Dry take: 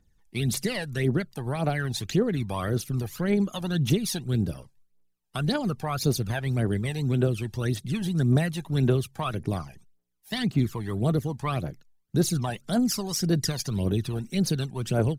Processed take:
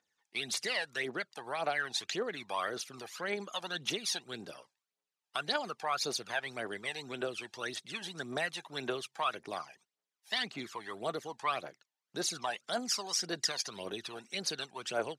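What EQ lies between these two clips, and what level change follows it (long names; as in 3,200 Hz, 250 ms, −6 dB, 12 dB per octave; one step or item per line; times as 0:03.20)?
band-pass filter 730–6,700 Hz
0.0 dB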